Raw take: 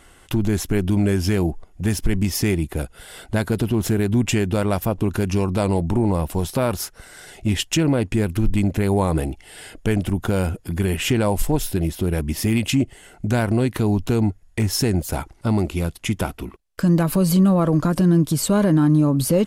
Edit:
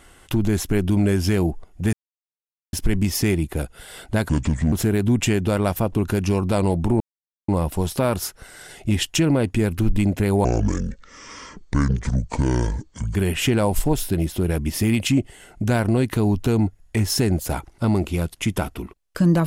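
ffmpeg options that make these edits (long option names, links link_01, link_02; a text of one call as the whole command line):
ffmpeg -i in.wav -filter_complex "[0:a]asplit=7[link_01][link_02][link_03][link_04][link_05][link_06][link_07];[link_01]atrim=end=1.93,asetpts=PTS-STARTPTS,afade=type=out:start_time=1.926:duration=0.004:curve=hsin,apad=pad_dur=0.8[link_08];[link_02]atrim=start=1.93:end=3.494,asetpts=PTS-STARTPTS,afade=type=in:duration=0.004:curve=hsin[link_09];[link_03]atrim=start=3.49:end=3.78,asetpts=PTS-STARTPTS,asetrate=29547,aresample=44100,atrim=end_sample=19088,asetpts=PTS-STARTPTS[link_10];[link_04]atrim=start=3.776:end=6.06,asetpts=PTS-STARTPTS,afade=type=out:start_time=2.28:duration=0.004:curve=hsin,apad=pad_dur=0.48[link_11];[link_05]atrim=start=6.06:end=9.024,asetpts=PTS-STARTPTS,afade=type=in:duration=0.004:curve=hsin[link_12];[link_06]atrim=start=9.02:end=10.78,asetpts=PTS-STARTPTS,asetrate=28665,aresample=44100,atrim=end_sample=119409,asetpts=PTS-STARTPTS[link_13];[link_07]atrim=start=10.776[link_14];[link_08][link_09]concat=n=2:v=0:a=1[link_15];[link_15][link_10]acrossfade=duration=0.004:curve1=hsin:curve2=hsin[link_16];[link_11][link_12]concat=n=2:v=0:a=1[link_17];[link_16][link_17]acrossfade=duration=0.004:curve1=hsin:curve2=hsin[link_18];[link_18][link_13]acrossfade=duration=0.004:curve1=hsin:curve2=hsin[link_19];[link_19][link_14]acrossfade=duration=0.004:curve1=hsin:curve2=hsin" out.wav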